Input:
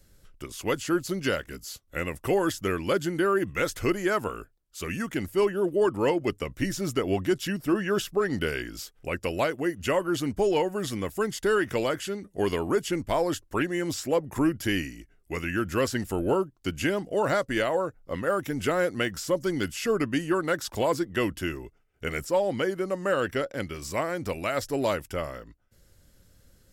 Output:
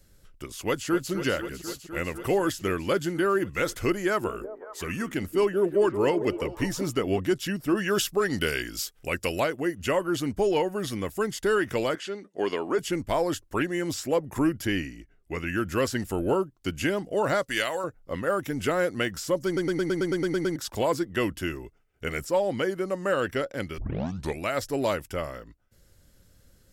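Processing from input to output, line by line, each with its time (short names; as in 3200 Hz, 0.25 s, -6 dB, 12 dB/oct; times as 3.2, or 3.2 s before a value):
0.66–1.11 echo throw 0.25 s, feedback 85%, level -11 dB
4–7.2 delay with a stepping band-pass 0.184 s, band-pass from 340 Hz, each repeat 0.7 oct, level -7 dB
7.77–9.4 high shelf 2400 Hz +8.5 dB
10.39–11.01 notch 7500 Hz, Q 8
11.95–12.79 BPF 280–5600 Hz
14.65–15.47 LPF 3800 Hz 6 dB/oct
17.43–17.84 tilt shelf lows -8 dB, about 1300 Hz
19.46 stutter in place 0.11 s, 10 plays
23.78 tape start 0.62 s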